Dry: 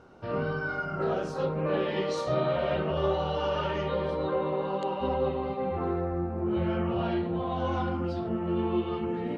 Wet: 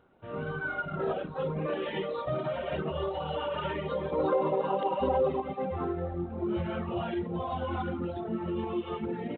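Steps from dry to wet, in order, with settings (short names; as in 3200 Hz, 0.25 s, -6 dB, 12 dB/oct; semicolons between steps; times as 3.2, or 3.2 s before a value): frequency-shifting echo 0.442 s, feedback 41%, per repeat +41 Hz, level -21 dB; AGC gain up to 10 dB; limiter -12 dBFS, peak gain reduction 6 dB; reverb removal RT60 1.5 s; 4.12–5.42 bell 600 Hz +6.5 dB 2.3 oct; gain -9 dB; G.726 32 kbps 8000 Hz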